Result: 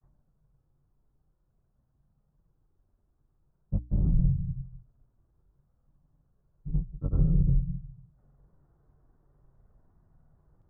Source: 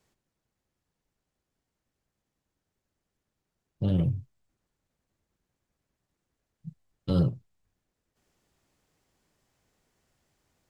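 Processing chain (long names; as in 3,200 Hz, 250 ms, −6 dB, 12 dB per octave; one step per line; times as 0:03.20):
sub-octave generator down 2 octaves, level 0 dB
on a send at −10 dB: convolution reverb RT60 0.50 s, pre-delay 46 ms
on the sum: flanger 0.5 Hz, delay 0.9 ms, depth 2.2 ms, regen −59%
reversed playback
downward compressor 5 to 1, threshold −36 dBFS, peak gain reduction 15 dB
reversed playback
Butterworth low-pass 1,400 Hz
parametric band 140 Hz +8 dB 0.49 octaves
granular cloud, pitch spread up and down by 0 semitones
low-shelf EQ 110 Hz +11.5 dB
mains-hum notches 60/120/180/240/300 Hz
level +7.5 dB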